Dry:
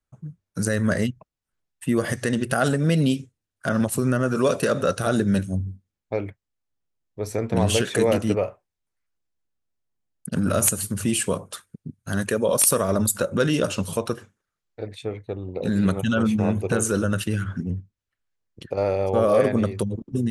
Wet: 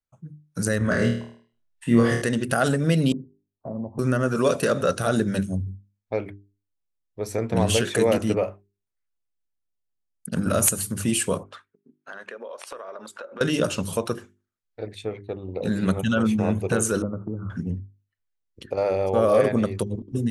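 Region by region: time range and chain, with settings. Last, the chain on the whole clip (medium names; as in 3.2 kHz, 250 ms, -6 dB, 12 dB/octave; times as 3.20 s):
0.78–2.22 s: distance through air 63 m + flutter echo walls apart 4.4 m, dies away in 0.55 s
3.12–3.99 s: steep low-pass 1 kHz 72 dB/octave + compression 2.5:1, threshold -30 dBFS + de-hum 98.73 Hz, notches 10
11.43–13.41 s: band-pass 550–2400 Hz + compression 10:1, threshold -33 dBFS
17.02–17.50 s: steep low-pass 1.3 kHz 96 dB/octave + peaking EQ 360 Hz +5 dB 2.4 oct + compression 2.5:1, threshold -28 dBFS
whole clip: spectral noise reduction 8 dB; hum notches 50/100/150/200/250/300/350/400 Hz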